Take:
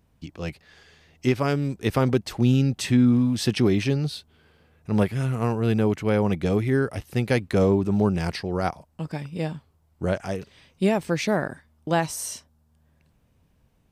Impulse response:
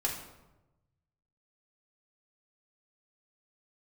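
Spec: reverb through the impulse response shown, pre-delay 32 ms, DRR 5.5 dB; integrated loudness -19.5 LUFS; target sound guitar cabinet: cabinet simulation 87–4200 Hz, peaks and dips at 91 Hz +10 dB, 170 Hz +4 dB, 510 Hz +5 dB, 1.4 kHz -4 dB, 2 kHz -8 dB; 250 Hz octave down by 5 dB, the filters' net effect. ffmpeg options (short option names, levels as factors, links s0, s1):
-filter_complex "[0:a]equalizer=f=250:t=o:g=-8,asplit=2[s0][s1];[1:a]atrim=start_sample=2205,adelay=32[s2];[s1][s2]afir=irnorm=-1:irlink=0,volume=0.299[s3];[s0][s3]amix=inputs=2:normalize=0,highpass=87,equalizer=f=91:t=q:w=4:g=10,equalizer=f=170:t=q:w=4:g=4,equalizer=f=510:t=q:w=4:g=5,equalizer=f=1400:t=q:w=4:g=-4,equalizer=f=2000:t=q:w=4:g=-8,lowpass=f=4200:w=0.5412,lowpass=f=4200:w=1.3066,volume=1.78"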